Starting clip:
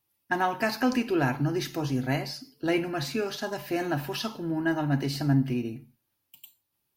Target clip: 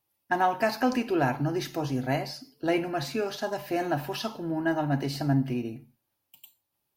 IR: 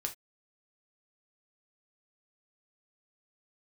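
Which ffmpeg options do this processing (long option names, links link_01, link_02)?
-af "equalizer=frequency=680:width=1.3:gain=6,volume=-2dB"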